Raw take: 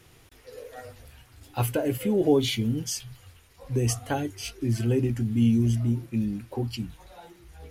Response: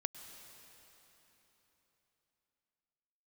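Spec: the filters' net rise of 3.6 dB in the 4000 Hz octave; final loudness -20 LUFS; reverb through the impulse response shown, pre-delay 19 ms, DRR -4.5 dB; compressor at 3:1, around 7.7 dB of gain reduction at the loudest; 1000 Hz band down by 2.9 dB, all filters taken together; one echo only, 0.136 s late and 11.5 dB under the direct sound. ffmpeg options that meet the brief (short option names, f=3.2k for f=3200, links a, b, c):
-filter_complex "[0:a]equalizer=f=1k:t=o:g=-4.5,equalizer=f=4k:t=o:g=5,acompressor=threshold=-27dB:ratio=3,aecho=1:1:136:0.266,asplit=2[a][b];[1:a]atrim=start_sample=2205,adelay=19[c];[b][c]afir=irnorm=-1:irlink=0,volume=5dB[d];[a][d]amix=inputs=2:normalize=0,volume=5.5dB"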